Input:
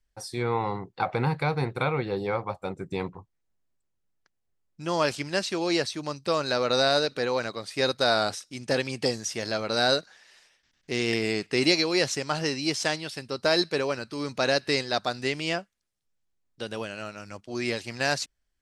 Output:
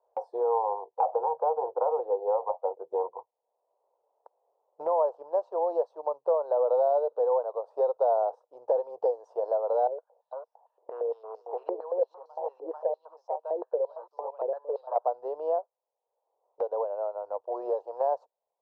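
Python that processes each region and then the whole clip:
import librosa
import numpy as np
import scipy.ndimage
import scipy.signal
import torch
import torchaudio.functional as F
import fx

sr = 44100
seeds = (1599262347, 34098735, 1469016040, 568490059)

y = fx.chain(x, sr, fx.cvsd(bps=64000),
    fx.echo_single(ms=441, db=-9.0),
    fx.filter_held_bandpass(hz=8.8, low_hz=360.0, high_hz=5600.0), at=(9.87, 14.96))
y = scipy.signal.sosfilt(scipy.signal.ellip(3, 1.0, 50, [470.0, 960.0], 'bandpass', fs=sr, output='sos'), y)
y = fx.band_squash(y, sr, depth_pct=70)
y = y * 10.0 ** (4.5 / 20.0)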